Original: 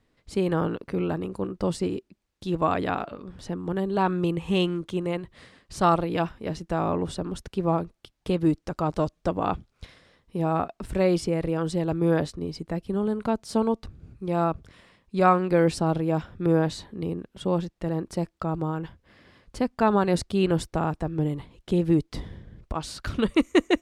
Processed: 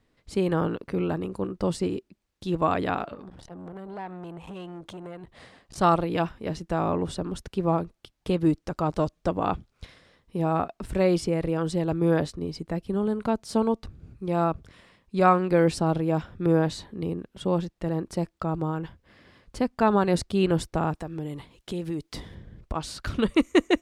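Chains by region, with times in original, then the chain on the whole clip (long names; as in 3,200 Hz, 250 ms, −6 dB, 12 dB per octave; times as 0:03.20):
0:03.14–0:05.78: downward compressor 4 to 1, threshold −36 dBFS + parametric band 740 Hz +8 dB 0.7 octaves + saturating transformer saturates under 720 Hz
0:20.95–0:22.35: spectral tilt +1.5 dB per octave + downward compressor 2.5 to 1, threshold −30 dBFS
whole clip: no processing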